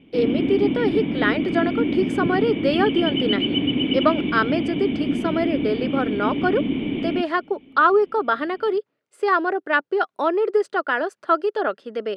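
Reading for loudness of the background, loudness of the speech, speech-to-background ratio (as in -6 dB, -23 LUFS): -24.0 LUFS, -23.0 LUFS, 1.0 dB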